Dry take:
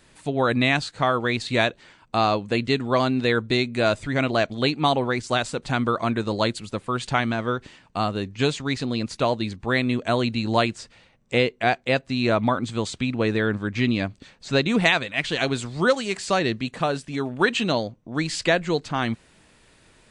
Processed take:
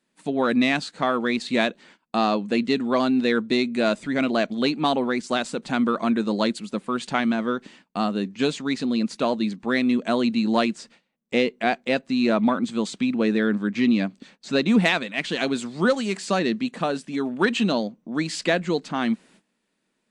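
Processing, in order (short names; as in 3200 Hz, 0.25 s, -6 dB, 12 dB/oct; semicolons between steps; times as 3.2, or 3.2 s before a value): one diode to ground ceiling -6 dBFS; resonant low shelf 140 Hz -13 dB, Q 3; gate -49 dBFS, range -18 dB; gain -1.5 dB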